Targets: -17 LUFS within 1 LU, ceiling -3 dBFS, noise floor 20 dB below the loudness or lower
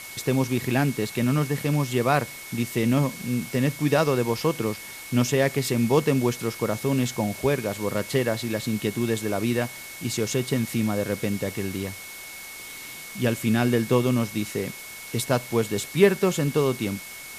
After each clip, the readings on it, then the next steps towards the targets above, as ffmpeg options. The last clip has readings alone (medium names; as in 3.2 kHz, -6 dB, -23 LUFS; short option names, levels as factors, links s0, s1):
steady tone 2.2 kHz; tone level -41 dBFS; noise floor -40 dBFS; noise floor target -45 dBFS; loudness -25.0 LUFS; peak level -6.0 dBFS; loudness target -17.0 LUFS
-> -af "bandreject=f=2200:w=30"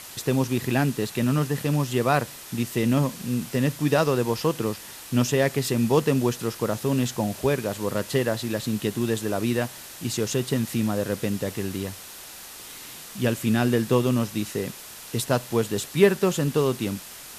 steady tone not found; noise floor -42 dBFS; noise floor target -45 dBFS
-> -af "afftdn=nr=6:nf=-42"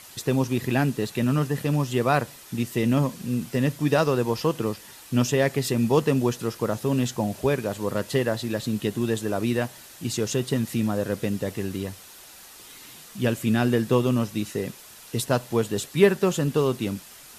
noise floor -47 dBFS; loudness -25.0 LUFS; peak level -6.5 dBFS; loudness target -17.0 LUFS
-> -af "volume=2.51,alimiter=limit=0.708:level=0:latency=1"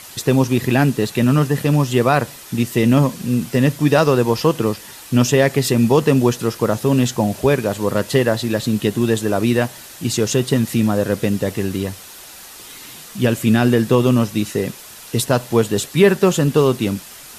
loudness -17.5 LUFS; peak level -3.0 dBFS; noise floor -39 dBFS